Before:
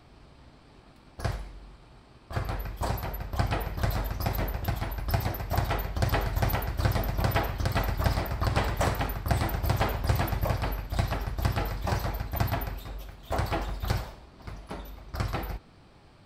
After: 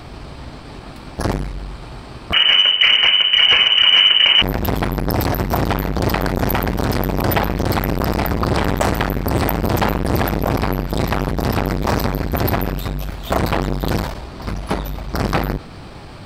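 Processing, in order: 2.33–4.42 s: frequency inversion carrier 3 kHz; loudness maximiser +21.5 dB; transformer saturation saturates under 510 Hz; trim -1.5 dB

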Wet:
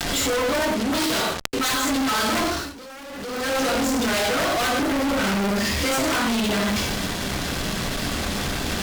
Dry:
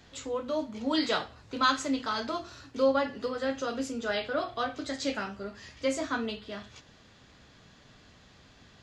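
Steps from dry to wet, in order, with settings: dynamic bell 400 Hz, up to -5 dB, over -40 dBFS, Q 1; reverberation, pre-delay 4 ms, DRR -7.5 dB; gain riding within 4 dB 0.5 s; integer overflow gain 13 dB; 0.74–1.83 s: feedback comb 130 Hz, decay 0.33 s, harmonics odd, mix 70%; 4.82–5.24 s: low-pass 1.5 kHz 12 dB/octave; fuzz box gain 49 dB, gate -43 dBFS; 2.45–3.57 s: dip -17.5 dB, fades 0.30 s linear; swell ahead of each attack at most 32 dB/s; trim -8 dB

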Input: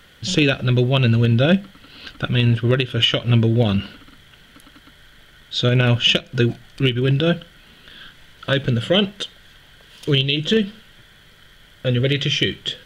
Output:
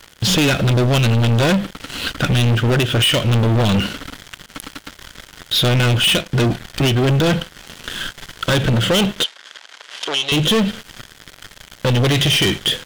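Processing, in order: waveshaping leveller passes 5; compression 1.5:1, threshold -26 dBFS, peak gain reduction 6.5 dB; 9.24–10.32 s: band-pass 650–6300 Hz

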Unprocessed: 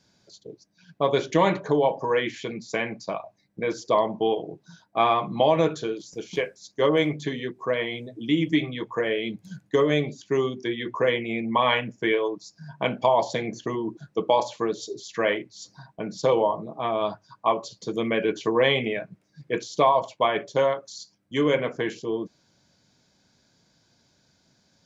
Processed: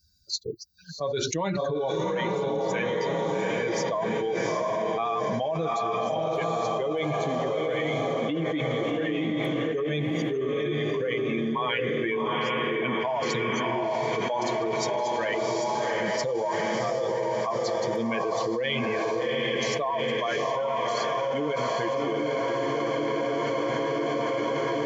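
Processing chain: expander on every frequency bin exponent 2; echo that smears into a reverb 755 ms, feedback 64%, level -4.5 dB; level flattener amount 100%; trim -8 dB

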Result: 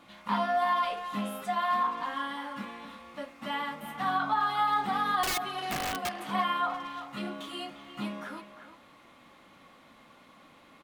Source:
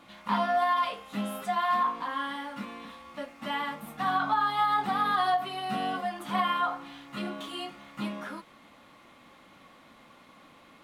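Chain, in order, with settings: 5.23–6.15 s: integer overflow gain 24.5 dB; speakerphone echo 350 ms, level -10 dB; trim -1.5 dB

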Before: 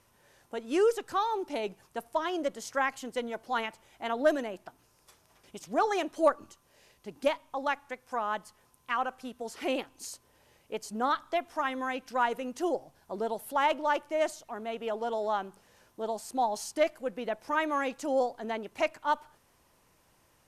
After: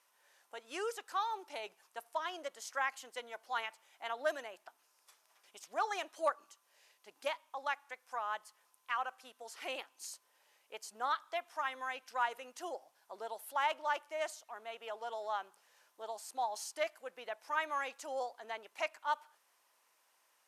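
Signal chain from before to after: high-pass 790 Hz 12 dB/octave; trim -4.5 dB

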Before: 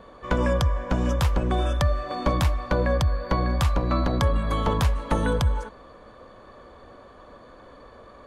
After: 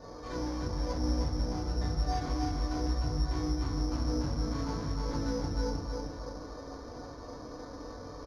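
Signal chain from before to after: 1.77–3.92 s: comb 2.8 ms, depth 89%; compression 5:1, threshold -30 dBFS, peak gain reduction 15 dB; hard clipper -36 dBFS, distortion -7 dB; chorus 1 Hz, delay 20 ms, depth 2.7 ms; feedback delay 310 ms, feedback 44%, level -4 dB; FDN reverb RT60 0.46 s, low-frequency decay 1.5×, high-frequency decay 0.65×, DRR -4.5 dB; careless resampling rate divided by 8×, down filtered, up zero stuff; tape spacing loss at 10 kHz 40 dB

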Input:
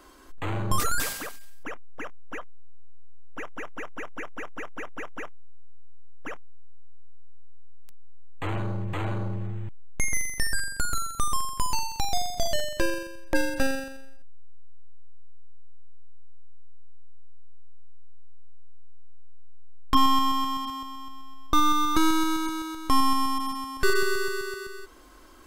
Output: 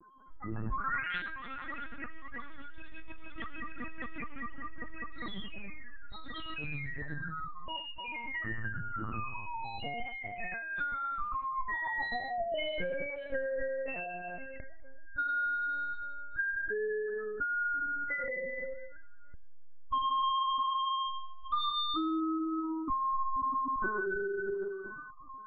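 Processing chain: tilt EQ +2 dB/octave; companded quantiser 6-bit; shuffle delay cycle 860 ms, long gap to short 3:1, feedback 57%, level -19 dB; loudest bins only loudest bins 4; reverberation, pre-delay 3 ms, DRR 4 dB; ever faster or slower copies 251 ms, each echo +5 st, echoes 3, each echo -6 dB; compression 4:1, threshold -33 dBFS, peak gain reduction 10.5 dB; LPC vocoder at 8 kHz pitch kept; 8.68–10.05 s: distance through air 240 m; trim +2.5 dB

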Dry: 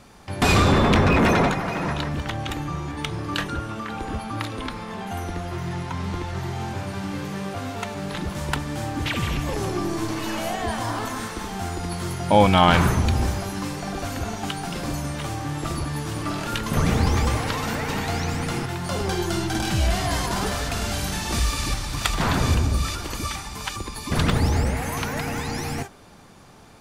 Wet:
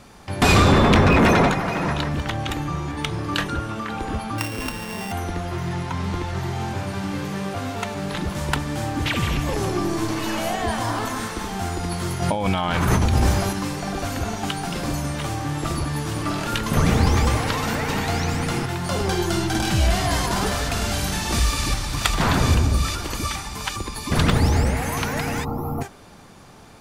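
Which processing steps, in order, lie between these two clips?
4.38–5.12 s: sorted samples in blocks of 16 samples; 12.22–13.53 s: compressor with a negative ratio -22 dBFS, ratio -1; 25.44–25.81 s: time-frequency box 1.4–11 kHz -28 dB; trim +2.5 dB

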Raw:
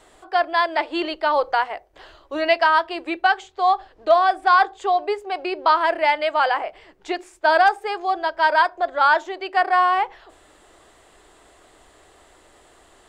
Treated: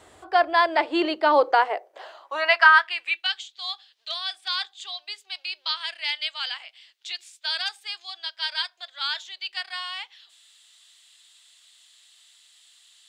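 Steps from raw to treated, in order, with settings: high-pass sweep 77 Hz -> 3.6 kHz, 0.45–3.36 s

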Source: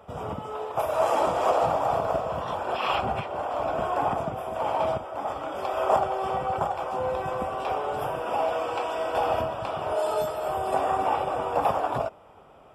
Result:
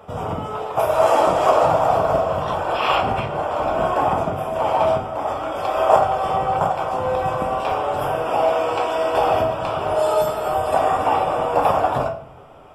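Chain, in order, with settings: simulated room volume 78 m³, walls mixed, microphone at 0.46 m; trim +6 dB

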